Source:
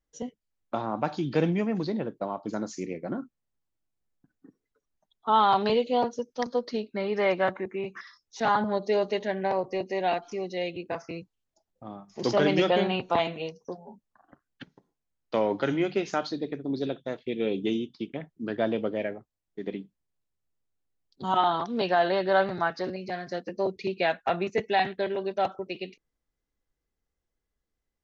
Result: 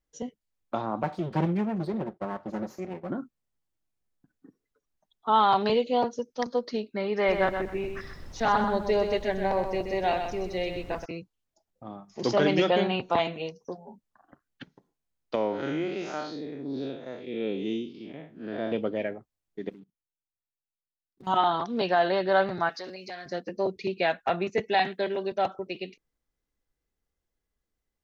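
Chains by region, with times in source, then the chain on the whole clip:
0:01.03–0:03.10: lower of the sound and its delayed copy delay 5.4 ms + high-pass filter 110 Hz + high-shelf EQ 2,800 Hz −12 dB
0:07.27–0:11.04: background noise brown −42 dBFS + repeating echo 126 ms, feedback 23%, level −7 dB
0:15.35–0:18.72: spectrum smeared in time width 133 ms + low-shelf EQ 91 Hz −10.5 dB
0:19.69–0:21.27: running median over 41 samples + output level in coarse steps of 24 dB
0:22.69–0:23.26: high-pass filter 470 Hz 6 dB per octave + high-shelf EQ 3,400 Hz +10 dB + downward compressor 2 to 1, threshold −38 dBFS
0:24.74–0:25.32: Butterworth high-pass 150 Hz + high-shelf EQ 4,600 Hz +5.5 dB
whole clip: no processing

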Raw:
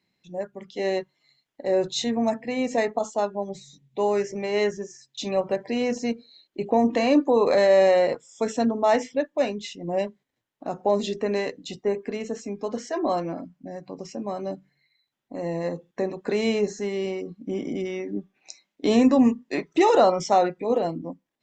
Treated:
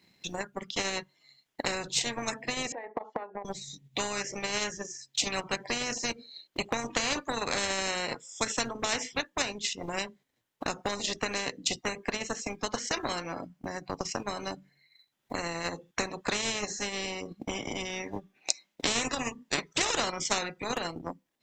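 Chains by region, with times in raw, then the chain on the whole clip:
0:02.72–0:03.45: downward compressor 16 to 1, threshold −35 dBFS + loudspeaker in its box 460–2,000 Hz, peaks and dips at 480 Hz +10 dB, 790 Hz +10 dB, 1,300 Hz −8 dB
whole clip: high-shelf EQ 3,100 Hz +4 dB; transient designer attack +11 dB, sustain −7 dB; every bin compressed towards the loudest bin 4 to 1; level −6.5 dB

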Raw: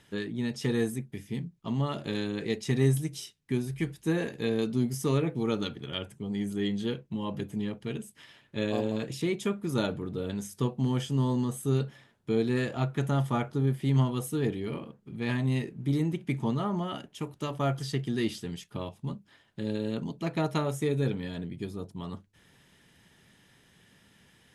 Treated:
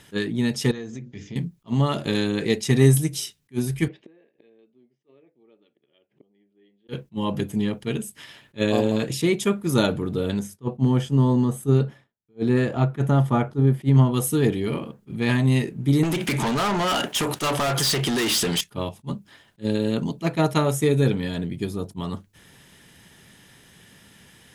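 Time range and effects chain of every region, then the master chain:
0:00.71–0:01.36: Butterworth low-pass 7,100 Hz 96 dB per octave + mains-hum notches 60/120/180/240/300/360/420/480/540 Hz + downward compressor 8 to 1, threshold −39 dBFS
0:03.88–0:06.89: gate with flip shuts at −30 dBFS, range −36 dB + loudspeaker in its box 300–3,000 Hz, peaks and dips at 360 Hz +5 dB, 590 Hz +4 dB, 960 Hz −5 dB, 1,400 Hz −9 dB
0:10.39–0:14.14: downward expander −49 dBFS + high-shelf EQ 2,300 Hz −11.5 dB
0:16.03–0:18.61: mid-hump overdrive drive 30 dB, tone 7,500 Hz, clips at −16.5 dBFS + downward compressor, threshold −30 dBFS
whole clip: high-shelf EQ 7,800 Hz +7 dB; level that may rise only so fast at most 460 dB per second; level +8.5 dB

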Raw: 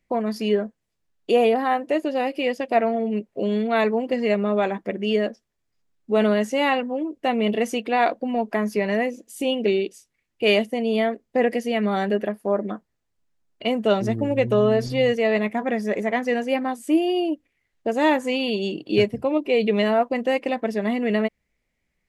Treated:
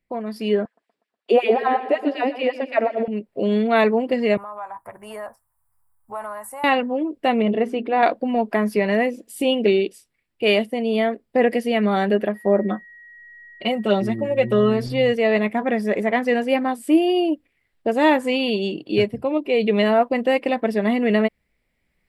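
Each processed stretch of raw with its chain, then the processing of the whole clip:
0:00.65–0:03.08: high-frequency loss of the air 55 metres + auto-filter high-pass sine 5.4 Hz 250–2,400 Hz + repeating echo 122 ms, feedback 60%, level −14 dB
0:04.37–0:06.64: drawn EQ curve 120 Hz 0 dB, 190 Hz −24 dB, 440 Hz −21 dB, 960 Hz +10 dB, 3,200 Hz −24 dB, 5,700 Hz −12 dB, 9,400 Hz +11 dB + downward compressor 2.5 to 1, threshold −37 dBFS
0:07.42–0:08.03: low-pass filter 1,100 Hz 6 dB per octave + mains-hum notches 60/120/180/240/300/360/420 Hz
0:12.34–0:14.79: comb filter 5.4 ms, depth 69% + steady tone 1,900 Hz −45 dBFS
whole clip: parametric band 6,400 Hz −12.5 dB 0.28 octaves; automatic gain control; level −5 dB

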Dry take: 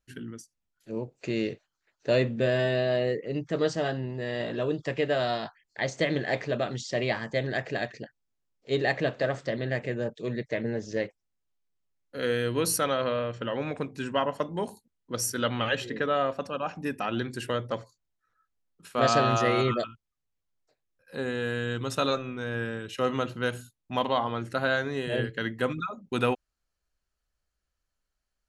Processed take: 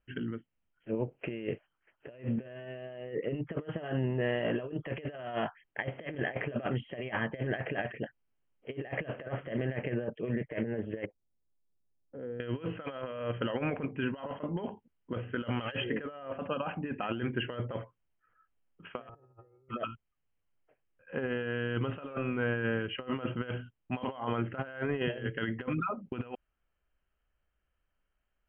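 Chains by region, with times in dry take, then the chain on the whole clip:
0:11.05–0:12.40: Bessel low-pass filter 510 Hz + downward compressor 2 to 1, threshold −50 dBFS
0:19.09–0:19.69: low-pass filter 1,100 Hz + spectral tilt −4 dB per octave + comb filter 2.3 ms, depth 98%
whole clip: Chebyshev low-pass filter 3,200 Hz, order 10; compressor whose output falls as the input rises −33 dBFS, ratio −0.5; level −2 dB

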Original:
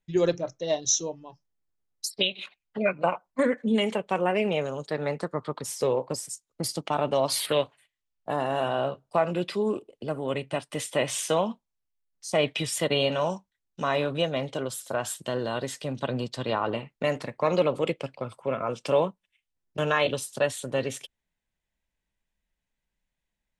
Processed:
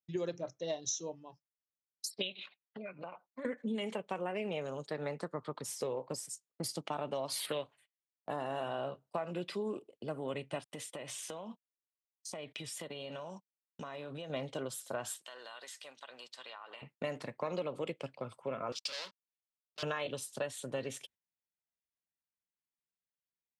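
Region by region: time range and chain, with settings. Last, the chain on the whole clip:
0:02.31–0:03.45: high shelf with overshoot 6,100 Hz −10.5 dB, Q 1.5 + downward compressor 5 to 1, threshold −35 dBFS
0:10.64–0:14.30: noise gate −43 dBFS, range −29 dB + downward compressor 16 to 1, threshold −32 dBFS
0:15.18–0:16.82: high-pass filter 1,100 Hz + downward compressor, threshold −37 dBFS
0:18.72–0:19.83: leveller curve on the samples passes 5 + resonant band-pass 4,600 Hz, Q 2.9
whole clip: high-pass filter 98 Hz; noise gate −52 dBFS, range −12 dB; downward compressor, threshold −26 dBFS; level −7 dB

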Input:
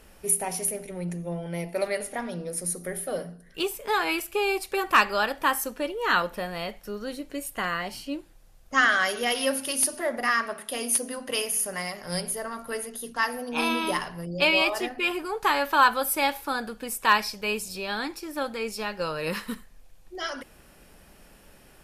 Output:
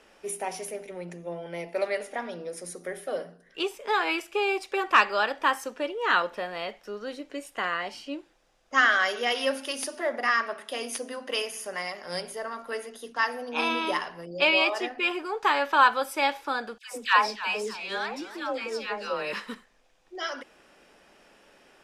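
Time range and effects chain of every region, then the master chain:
0:16.78–0:19.33: all-pass dispersion lows, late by 148 ms, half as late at 860 Hz + feedback echo with a swinging delay time 294 ms, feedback 36%, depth 201 cents, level −14.5 dB
whole clip: three-way crossover with the lows and the highs turned down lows −19 dB, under 250 Hz, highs −21 dB, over 7,100 Hz; notch filter 4,300 Hz, Q 14

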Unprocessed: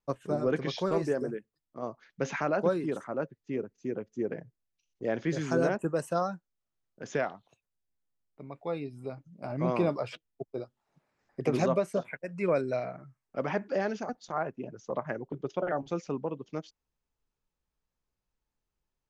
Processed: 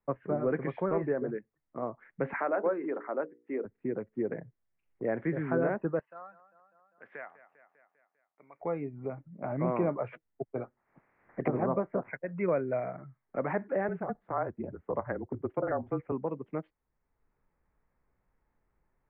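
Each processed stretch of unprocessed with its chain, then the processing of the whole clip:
0:02.33–0:03.65: high-pass filter 280 Hz 24 dB per octave + mains-hum notches 60/120/180/240/300/360/420/480 Hz
0:05.99–0:08.61: first difference + repeating echo 199 ms, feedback 53%, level −17.5 dB
0:10.54–0:12.09: ceiling on every frequency bin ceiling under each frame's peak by 13 dB + treble cut that deepens with the level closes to 940 Hz, closed at −25.5 dBFS
0:13.88–0:16.12: low-pass filter 2,000 Hz + frequency shifter −31 Hz
whole clip: elliptic low-pass filter 2,100 Hz, stop band 70 dB; multiband upward and downward compressor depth 40%

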